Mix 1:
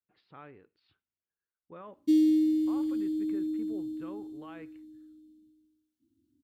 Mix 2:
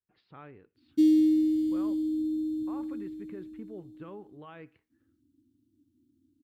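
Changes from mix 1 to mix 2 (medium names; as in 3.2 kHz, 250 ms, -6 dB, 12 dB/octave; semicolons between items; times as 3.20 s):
background: entry -1.10 s; master: add bass shelf 180 Hz +6.5 dB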